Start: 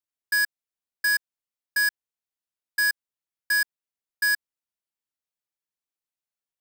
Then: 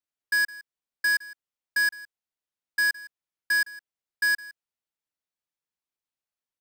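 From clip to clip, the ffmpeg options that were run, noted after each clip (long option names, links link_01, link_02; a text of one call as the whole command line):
ffmpeg -i in.wav -af "highshelf=frequency=7100:gain=-7,aecho=1:1:162:0.106" out.wav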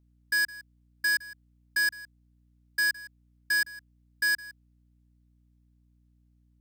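ffmpeg -i in.wav -filter_complex "[0:a]acrossover=split=770|1600|3800[link_01][link_02][link_03][link_04];[link_02]alimiter=level_in=10.5dB:limit=-24dB:level=0:latency=1:release=420,volume=-10.5dB[link_05];[link_01][link_05][link_03][link_04]amix=inputs=4:normalize=0,aeval=exprs='val(0)+0.000708*(sin(2*PI*60*n/s)+sin(2*PI*2*60*n/s)/2+sin(2*PI*3*60*n/s)/3+sin(2*PI*4*60*n/s)/4+sin(2*PI*5*60*n/s)/5)':channel_layout=same" out.wav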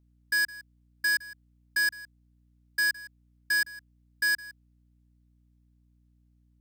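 ffmpeg -i in.wav -af anull out.wav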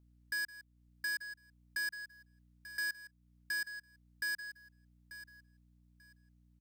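ffmpeg -i in.wav -af "acompressor=threshold=-51dB:ratio=1.5,aecho=1:1:889|1778:0.2|0.0419,volume=-1.5dB" out.wav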